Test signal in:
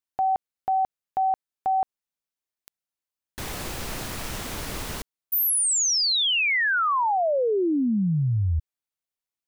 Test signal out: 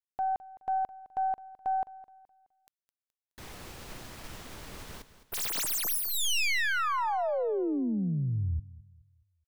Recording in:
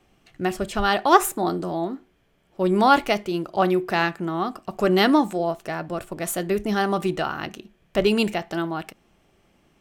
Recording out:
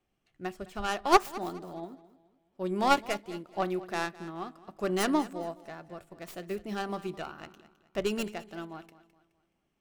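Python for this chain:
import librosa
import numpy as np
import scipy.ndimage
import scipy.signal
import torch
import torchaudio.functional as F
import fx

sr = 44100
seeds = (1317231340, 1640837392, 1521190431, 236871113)

p1 = fx.tracing_dist(x, sr, depth_ms=0.19)
p2 = p1 + fx.echo_feedback(p1, sr, ms=211, feedback_pct=38, wet_db=-13.5, dry=0)
p3 = fx.upward_expand(p2, sr, threshold_db=-33.0, expansion=1.5)
y = p3 * librosa.db_to_amplitude(-6.0)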